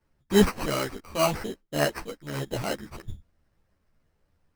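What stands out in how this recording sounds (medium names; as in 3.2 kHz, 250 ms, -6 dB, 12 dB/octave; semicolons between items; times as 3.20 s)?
aliases and images of a low sample rate 3.5 kHz, jitter 0%; a shimmering, thickened sound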